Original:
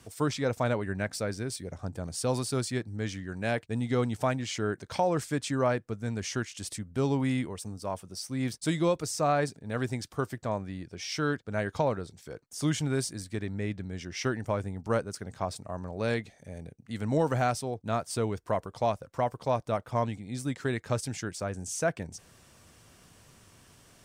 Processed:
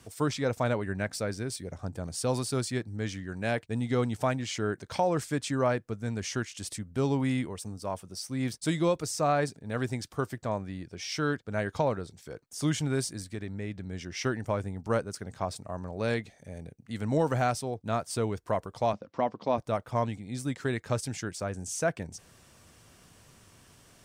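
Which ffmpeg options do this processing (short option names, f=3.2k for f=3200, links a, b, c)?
-filter_complex "[0:a]asettb=1/sr,asplit=3[a][b][c];[a]atrim=end=13.284[d];[b]atrim=start=13.28:end=13.87,asetpts=PTS-STARTPTS,afade=t=in:d=0.004:c=qsin,afade=t=out:st=0.586:d=0.004:c=qsin,acompressor=threshold=-37dB:ratio=1.5:attack=3.2:release=140:knee=1:detection=peak[e];[c]atrim=start=13.866[f];[d][e]acrossfade=d=0.004:c1=hsin:c2=qsin[g];[g][f]acrossfade=d=0.004:c1=qsin:c2=hsin,asettb=1/sr,asplit=3[h][i][j];[h]atrim=end=18.934[k];[i]atrim=start=18.93:end=19.58,asetpts=PTS-STARTPTS,afade=t=in:d=0.004:c=qsin,afade=t=out:st=0.646:d=0.004:c=qsin,highpass=130,equalizer=f=130:t=q:w=4:g=-8,equalizer=f=210:t=q:w=4:g=8,equalizer=f=300:t=q:w=4:g=5,equalizer=f=1.5k:t=q:w=4:g=-4,lowpass=f=5.2k:w=0.5412,lowpass=f=5.2k:w=1.3066[l];[j]atrim=start=19.576[m];[k][l]acrossfade=d=0.004:c1=hsin:c2=qsin[n];[n][m]acrossfade=d=0.004:c1=qsin:c2=hsin"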